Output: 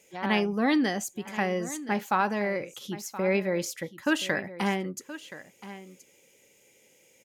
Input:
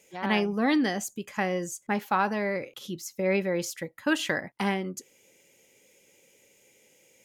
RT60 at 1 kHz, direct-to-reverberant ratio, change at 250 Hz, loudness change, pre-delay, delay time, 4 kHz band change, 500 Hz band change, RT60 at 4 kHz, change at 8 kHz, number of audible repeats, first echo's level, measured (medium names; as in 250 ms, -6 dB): no reverb, no reverb, 0.0 dB, 0.0 dB, no reverb, 1024 ms, 0.0 dB, 0.0 dB, no reverb, 0.0 dB, 1, -15.0 dB